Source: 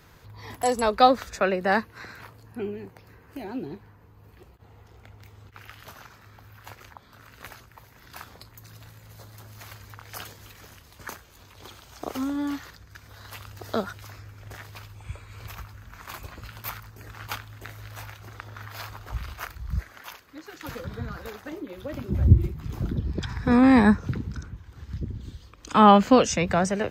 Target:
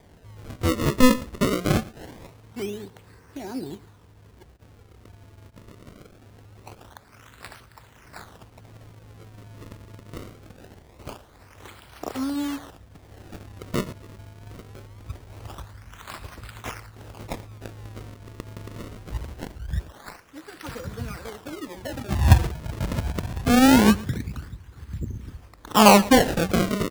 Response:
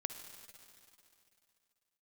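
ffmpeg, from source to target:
-filter_complex "[0:a]acrusher=samples=32:mix=1:aa=0.000001:lfo=1:lforange=51.2:lforate=0.23,asplit=2[s0][s1];[s1]aecho=0:1:113:0.1[s2];[s0][s2]amix=inputs=2:normalize=0,volume=1.12"

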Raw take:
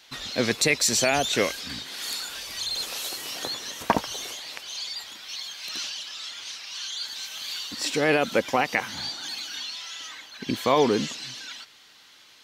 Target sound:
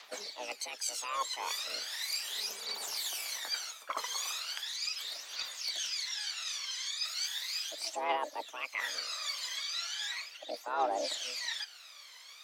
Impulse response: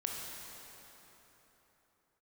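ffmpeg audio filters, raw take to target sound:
-filter_complex "[0:a]areverse,acompressor=threshold=0.02:ratio=16,areverse,afreqshift=370,aphaser=in_gain=1:out_gain=1:delay=1:decay=0.71:speed=0.37:type=triangular,asplit=3[s0][s1][s2];[s1]asetrate=22050,aresample=44100,atempo=2,volume=0.224[s3];[s2]asetrate=55563,aresample=44100,atempo=0.793701,volume=0.158[s4];[s0][s3][s4]amix=inputs=3:normalize=0,volume=0.75"

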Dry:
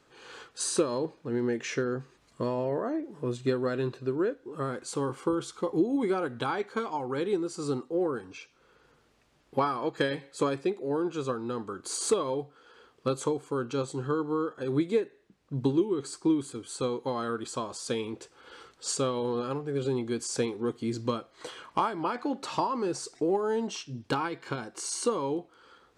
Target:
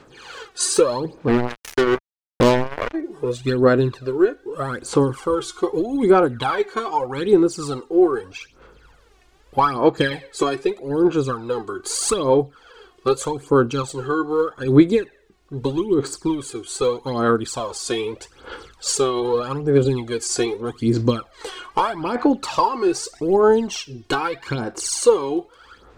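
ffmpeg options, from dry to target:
-filter_complex "[0:a]aphaser=in_gain=1:out_gain=1:delay=2.8:decay=0.68:speed=0.81:type=sinusoidal,asplit=3[s0][s1][s2];[s0]afade=t=out:st=1.27:d=0.02[s3];[s1]acrusher=bits=3:mix=0:aa=0.5,afade=t=in:st=1.27:d=0.02,afade=t=out:st=2.93:d=0.02[s4];[s2]afade=t=in:st=2.93:d=0.02[s5];[s3][s4][s5]amix=inputs=3:normalize=0,asubboost=boost=3.5:cutoff=69,volume=2.24"

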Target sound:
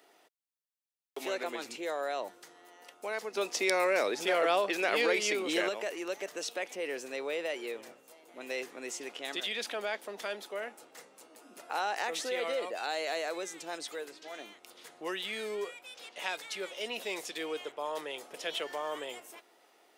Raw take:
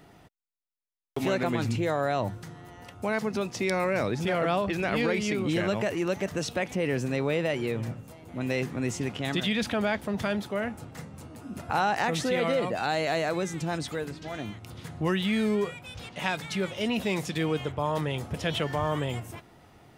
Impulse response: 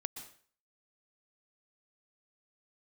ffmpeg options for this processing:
-filter_complex "[0:a]highpass=f=400:w=0.5412,highpass=f=400:w=1.3066,equalizer=f=960:t=o:w=2.8:g=-6,asettb=1/sr,asplit=3[s0][s1][s2];[s0]atrim=end=3.374[s3];[s1]atrim=start=3.37:end=5.69,asetpts=PTS-STARTPTS,afade=t=in:d=0.004:c=qsin,afade=t=out:st=2.316:d=0.004:c=qsin,acontrast=63[s4];[s2]atrim=start=5.686[s5];[s3][s4]acrossfade=d=0.004:c1=hsin:c2=qsin[s6];[s6][s5]acrossfade=d=0.004:c1=qsin:c2=hsin,volume=0.841"

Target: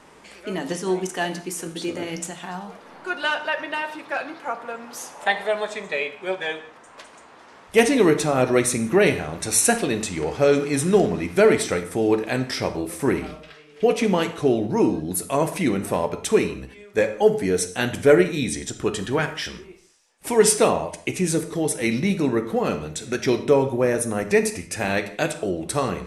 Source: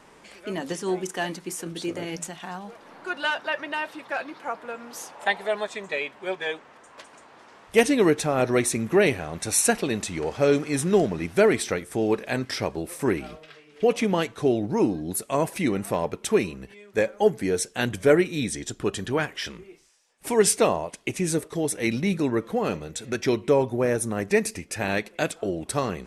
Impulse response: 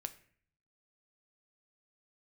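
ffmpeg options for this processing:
-filter_complex "[1:a]atrim=start_sample=2205,afade=t=out:st=0.15:d=0.01,atrim=end_sample=7056,asetrate=23814,aresample=44100[s0];[0:a][s0]afir=irnorm=-1:irlink=0,volume=1.26"

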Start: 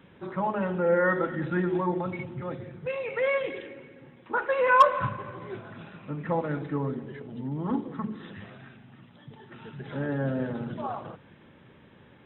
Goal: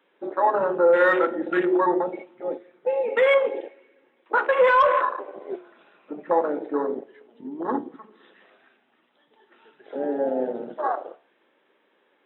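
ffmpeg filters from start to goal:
-af "highpass=f=340:w=0.5412,highpass=f=340:w=1.3066,afwtdn=0.0282,acontrast=84,alimiter=limit=0.224:level=0:latency=1:release=29,flanger=delay=9.6:depth=7:regen=-75:speed=0.42:shape=sinusoidal,volume=2.11"

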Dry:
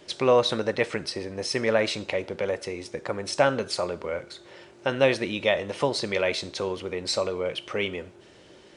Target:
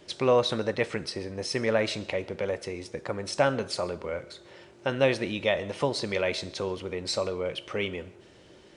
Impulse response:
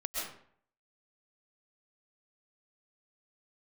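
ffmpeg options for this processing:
-filter_complex "[0:a]lowshelf=f=180:g=5.5,asplit=2[s0][s1];[1:a]atrim=start_sample=2205[s2];[s1][s2]afir=irnorm=-1:irlink=0,volume=0.0668[s3];[s0][s3]amix=inputs=2:normalize=0,volume=0.668"

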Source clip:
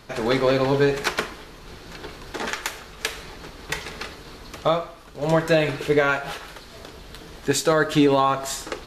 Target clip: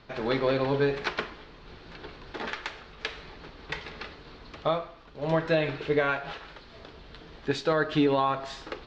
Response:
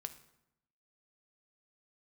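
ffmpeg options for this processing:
-af "lowpass=f=4500:w=0.5412,lowpass=f=4500:w=1.3066,volume=0.501"

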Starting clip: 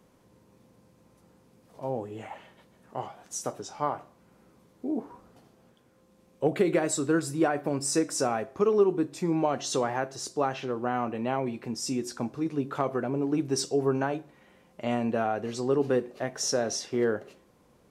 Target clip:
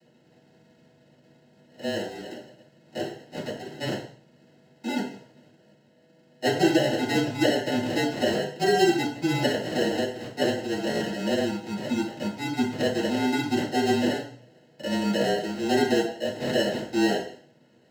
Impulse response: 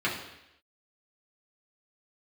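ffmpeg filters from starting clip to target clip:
-filter_complex "[0:a]acrusher=samples=37:mix=1:aa=0.000001,afreqshift=-27[s0];[1:a]atrim=start_sample=2205,asetrate=74970,aresample=44100[s1];[s0][s1]afir=irnorm=-1:irlink=0,volume=0.668"

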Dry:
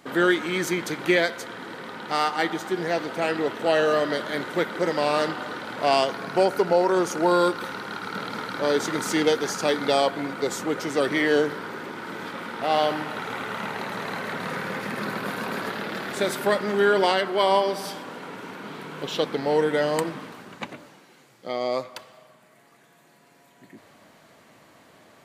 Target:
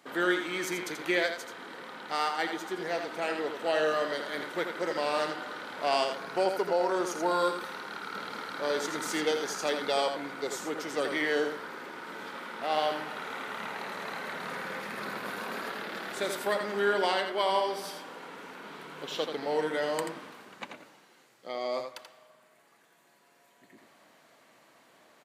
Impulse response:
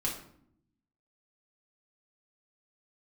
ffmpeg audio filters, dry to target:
-af "highpass=f=380:p=1,aecho=1:1:84:0.447,volume=0.501"

